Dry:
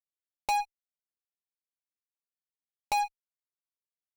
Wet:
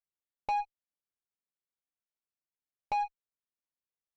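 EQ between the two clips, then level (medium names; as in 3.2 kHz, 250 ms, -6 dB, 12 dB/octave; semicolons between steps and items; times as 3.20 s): tape spacing loss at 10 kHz 31 dB; 0.0 dB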